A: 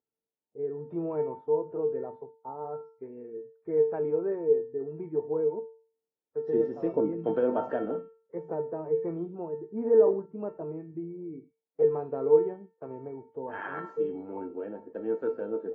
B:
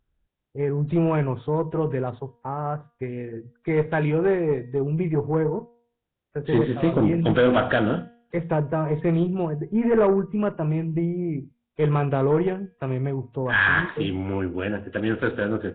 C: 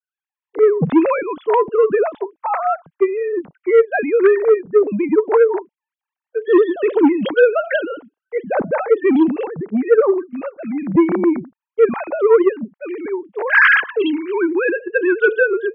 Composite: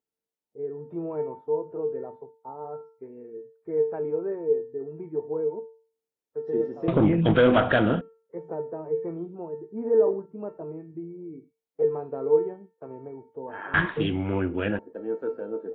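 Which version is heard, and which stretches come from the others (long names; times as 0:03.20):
A
0:06.88–0:08.01: punch in from B
0:13.74–0:14.79: punch in from B
not used: C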